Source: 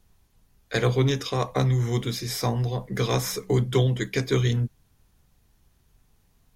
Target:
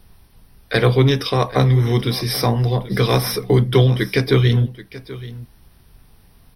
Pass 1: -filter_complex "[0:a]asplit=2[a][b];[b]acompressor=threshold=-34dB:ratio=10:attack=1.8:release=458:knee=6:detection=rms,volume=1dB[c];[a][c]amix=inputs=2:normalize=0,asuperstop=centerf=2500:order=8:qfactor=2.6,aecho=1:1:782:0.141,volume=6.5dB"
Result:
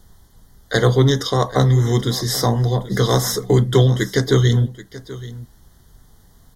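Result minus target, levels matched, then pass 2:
8000 Hz band +6.5 dB
-filter_complex "[0:a]asplit=2[a][b];[b]acompressor=threshold=-34dB:ratio=10:attack=1.8:release=458:knee=6:detection=rms,volume=1dB[c];[a][c]amix=inputs=2:normalize=0,asuperstop=centerf=7100:order=8:qfactor=2.6,aecho=1:1:782:0.141,volume=6.5dB"

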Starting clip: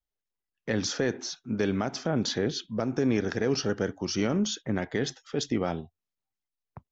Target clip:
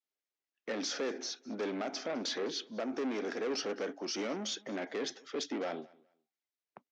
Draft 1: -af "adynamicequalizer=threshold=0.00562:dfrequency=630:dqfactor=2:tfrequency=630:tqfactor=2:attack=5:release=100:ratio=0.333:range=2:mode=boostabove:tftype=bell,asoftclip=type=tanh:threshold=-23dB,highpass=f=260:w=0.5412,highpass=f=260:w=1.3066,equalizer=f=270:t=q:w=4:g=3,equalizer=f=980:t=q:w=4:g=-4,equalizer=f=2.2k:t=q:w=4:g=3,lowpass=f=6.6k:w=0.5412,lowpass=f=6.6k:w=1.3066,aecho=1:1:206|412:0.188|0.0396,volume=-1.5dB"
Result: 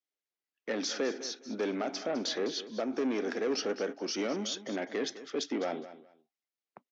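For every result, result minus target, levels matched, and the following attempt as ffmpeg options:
echo-to-direct +9.5 dB; soft clip: distortion -5 dB
-af "adynamicequalizer=threshold=0.00562:dfrequency=630:dqfactor=2:tfrequency=630:tqfactor=2:attack=5:release=100:ratio=0.333:range=2:mode=boostabove:tftype=bell,asoftclip=type=tanh:threshold=-23dB,highpass=f=260:w=0.5412,highpass=f=260:w=1.3066,equalizer=f=270:t=q:w=4:g=3,equalizer=f=980:t=q:w=4:g=-4,equalizer=f=2.2k:t=q:w=4:g=3,lowpass=f=6.6k:w=0.5412,lowpass=f=6.6k:w=1.3066,aecho=1:1:206|412:0.0631|0.0133,volume=-1.5dB"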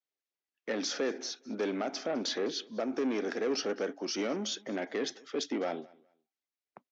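soft clip: distortion -5 dB
-af "adynamicequalizer=threshold=0.00562:dfrequency=630:dqfactor=2:tfrequency=630:tqfactor=2:attack=5:release=100:ratio=0.333:range=2:mode=boostabove:tftype=bell,asoftclip=type=tanh:threshold=-29dB,highpass=f=260:w=0.5412,highpass=f=260:w=1.3066,equalizer=f=270:t=q:w=4:g=3,equalizer=f=980:t=q:w=4:g=-4,equalizer=f=2.2k:t=q:w=4:g=3,lowpass=f=6.6k:w=0.5412,lowpass=f=6.6k:w=1.3066,aecho=1:1:206|412:0.0631|0.0133,volume=-1.5dB"

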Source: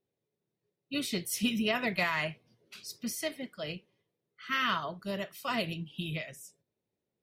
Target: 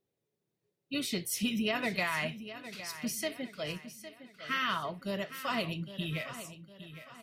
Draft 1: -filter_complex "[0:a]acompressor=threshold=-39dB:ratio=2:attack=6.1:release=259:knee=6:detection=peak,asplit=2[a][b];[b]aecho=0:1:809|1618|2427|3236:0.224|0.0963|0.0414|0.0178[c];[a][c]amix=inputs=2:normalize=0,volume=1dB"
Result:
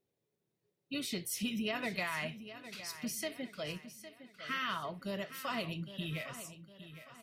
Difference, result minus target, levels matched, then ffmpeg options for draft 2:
compressor: peak gain reduction +5 dB
-filter_complex "[0:a]acompressor=threshold=-29.5dB:ratio=2:attack=6.1:release=259:knee=6:detection=peak,asplit=2[a][b];[b]aecho=0:1:809|1618|2427|3236:0.224|0.0963|0.0414|0.0178[c];[a][c]amix=inputs=2:normalize=0,volume=1dB"

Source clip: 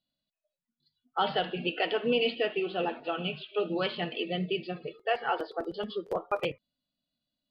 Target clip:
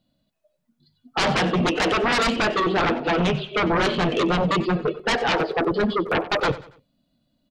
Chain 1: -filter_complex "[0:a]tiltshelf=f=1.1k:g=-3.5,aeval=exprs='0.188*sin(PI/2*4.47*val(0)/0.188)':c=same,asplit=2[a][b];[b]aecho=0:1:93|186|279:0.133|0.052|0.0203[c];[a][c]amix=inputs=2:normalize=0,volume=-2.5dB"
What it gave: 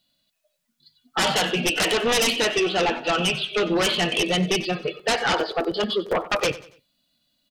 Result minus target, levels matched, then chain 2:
1000 Hz band -2.5 dB
-filter_complex "[0:a]tiltshelf=f=1.1k:g=7,aeval=exprs='0.188*sin(PI/2*4.47*val(0)/0.188)':c=same,asplit=2[a][b];[b]aecho=0:1:93|186|279:0.133|0.052|0.0203[c];[a][c]amix=inputs=2:normalize=0,volume=-2.5dB"

